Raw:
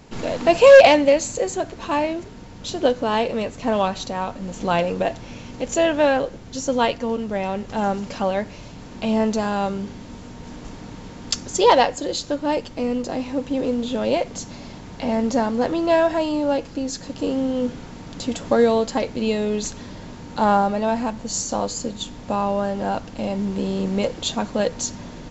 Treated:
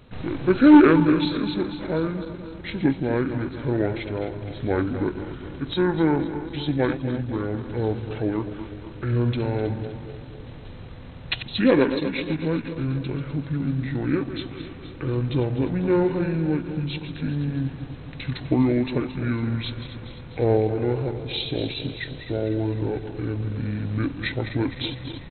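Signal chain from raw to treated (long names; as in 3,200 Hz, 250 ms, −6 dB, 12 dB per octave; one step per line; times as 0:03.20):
feedback delay that plays each chunk backwards 125 ms, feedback 75%, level −10.5 dB
pitch shifter −10.5 semitones
level −3 dB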